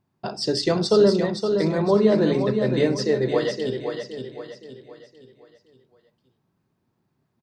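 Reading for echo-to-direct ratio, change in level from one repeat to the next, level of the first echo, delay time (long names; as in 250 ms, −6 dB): −5.5 dB, −7.5 dB, −6.5 dB, 517 ms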